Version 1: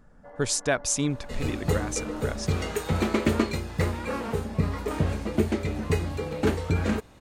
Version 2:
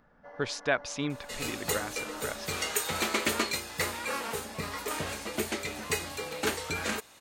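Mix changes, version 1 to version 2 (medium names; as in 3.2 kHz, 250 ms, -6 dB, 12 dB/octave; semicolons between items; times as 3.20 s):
speech: add distance through air 310 m; second sound: add bass shelf 380 Hz -7.5 dB; master: add tilt EQ +3 dB/octave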